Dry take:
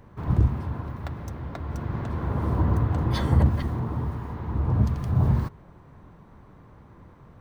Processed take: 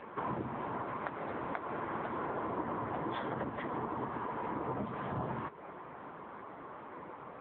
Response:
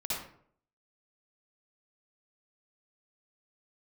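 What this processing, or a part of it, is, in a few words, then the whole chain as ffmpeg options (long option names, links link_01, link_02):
voicemail: -filter_complex "[0:a]asplit=3[link_01][link_02][link_03];[link_01]afade=type=out:start_time=0.79:duration=0.02[link_04];[link_02]highpass=49,afade=type=in:start_time=0.79:duration=0.02,afade=type=out:start_time=2.12:duration=0.02[link_05];[link_03]afade=type=in:start_time=2.12:duration=0.02[link_06];[link_04][link_05][link_06]amix=inputs=3:normalize=0,highpass=440,lowpass=3000,lowshelf=frequency=210:gain=3,acompressor=threshold=-45dB:ratio=6,volume=12dB" -ar 8000 -c:a libopencore_amrnb -b:a 6700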